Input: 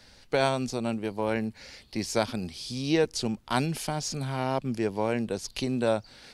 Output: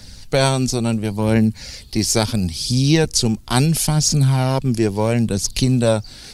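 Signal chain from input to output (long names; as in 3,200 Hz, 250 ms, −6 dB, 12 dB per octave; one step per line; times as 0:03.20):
bass and treble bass +12 dB, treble +12 dB
phase shifter 0.73 Hz, delay 3.1 ms, feedback 31%
level +5.5 dB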